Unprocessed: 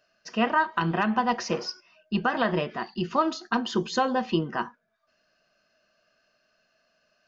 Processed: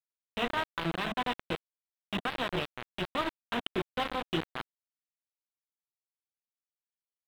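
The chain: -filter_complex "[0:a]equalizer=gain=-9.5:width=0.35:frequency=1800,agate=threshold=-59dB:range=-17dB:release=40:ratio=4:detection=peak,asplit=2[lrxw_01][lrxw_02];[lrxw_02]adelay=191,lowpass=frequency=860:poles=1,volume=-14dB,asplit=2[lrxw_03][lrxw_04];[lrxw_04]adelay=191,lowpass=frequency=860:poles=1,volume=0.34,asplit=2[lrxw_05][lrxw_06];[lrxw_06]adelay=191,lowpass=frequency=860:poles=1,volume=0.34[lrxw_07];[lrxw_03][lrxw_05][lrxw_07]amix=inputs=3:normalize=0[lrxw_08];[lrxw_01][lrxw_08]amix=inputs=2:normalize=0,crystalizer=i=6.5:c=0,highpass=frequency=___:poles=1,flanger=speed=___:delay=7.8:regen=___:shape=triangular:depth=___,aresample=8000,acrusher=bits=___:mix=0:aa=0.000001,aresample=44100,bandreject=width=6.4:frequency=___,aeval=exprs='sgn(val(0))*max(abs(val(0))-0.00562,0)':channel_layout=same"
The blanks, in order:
48, 1.6, 77, 1.3, 4, 220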